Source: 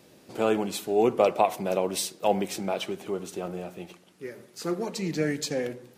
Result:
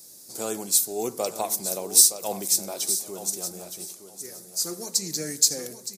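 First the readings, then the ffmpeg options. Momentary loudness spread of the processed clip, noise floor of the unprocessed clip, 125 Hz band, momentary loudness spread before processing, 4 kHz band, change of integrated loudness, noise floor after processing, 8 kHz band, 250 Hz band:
19 LU, −57 dBFS, can't be measured, 18 LU, +8.5 dB, +4.5 dB, −48 dBFS, +17.5 dB, −7.0 dB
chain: -af "aecho=1:1:917|1834|2751:0.282|0.0564|0.0113,aexciter=amount=13:drive=6.5:freq=4400,volume=-7.5dB"

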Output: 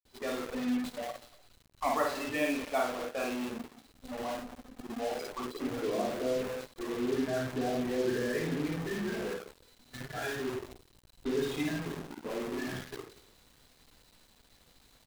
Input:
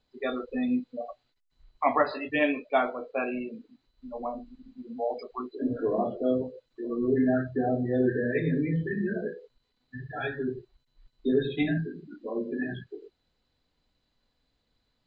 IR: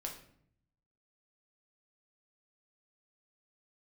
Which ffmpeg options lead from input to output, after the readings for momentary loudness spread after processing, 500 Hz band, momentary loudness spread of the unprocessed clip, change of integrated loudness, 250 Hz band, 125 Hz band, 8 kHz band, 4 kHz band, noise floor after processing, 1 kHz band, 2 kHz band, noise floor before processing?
13 LU, −4.5 dB, 16 LU, −5.0 dB, −6.0 dB, −7.5 dB, can't be measured, +3.5 dB, −64 dBFS, −4.5 dB, −3.5 dB, −76 dBFS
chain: -af "aeval=exprs='val(0)+0.5*0.0237*sgn(val(0))':channel_layout=same,aecho=1:1:53|238:0.708|0.15,acrusher=bits=4:mix=0:aa=0.5,volume=-8.5dB"

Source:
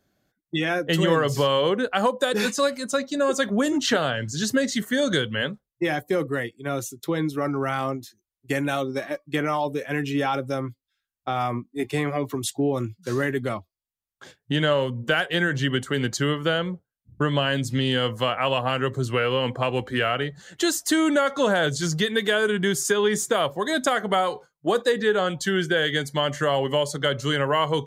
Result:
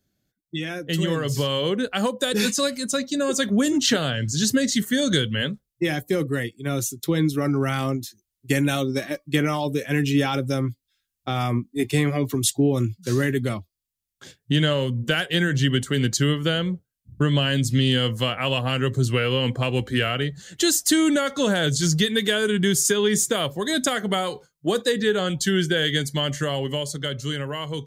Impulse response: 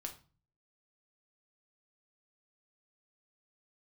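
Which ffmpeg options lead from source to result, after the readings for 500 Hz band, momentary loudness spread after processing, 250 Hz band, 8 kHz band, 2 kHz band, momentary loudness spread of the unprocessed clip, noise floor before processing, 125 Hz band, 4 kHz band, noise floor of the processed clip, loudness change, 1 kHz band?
−1.5 dB, 7 LU, +3.0 dB, +6.0 dB, −1.0 dB, 7 LU, below −85 dBFS, +5.5 dB, +3.0 dB, −82 dBFS, +1.5 dB, −4.5 dB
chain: -af "dynaudnorm=framelen=170:gausssize=17:maxgain=9.5dB,equalizer=frequency=900:width=0.52:gain=-12.5"

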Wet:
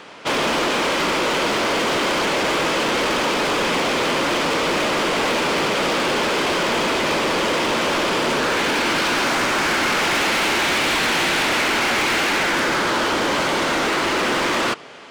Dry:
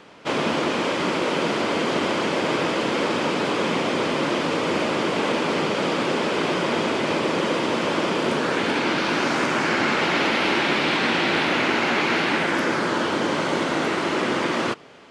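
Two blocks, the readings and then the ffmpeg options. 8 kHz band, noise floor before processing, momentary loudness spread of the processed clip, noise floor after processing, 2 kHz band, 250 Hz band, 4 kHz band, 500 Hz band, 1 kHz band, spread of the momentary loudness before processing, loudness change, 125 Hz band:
+9.5 dB, −25 dBFS, 2 LU, −21 dBFS, +4.0 dB, −0.5 dB, +5.5 dB, +1.5 dB, +3.5 dB, 3 LU, +3.5 dB, −1.0 dB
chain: -af "lowshelf=frequency=400:gain=-8.5,volume=26.5dB,asoftclip=hard,volume=-26.5dB,volume=9dB"

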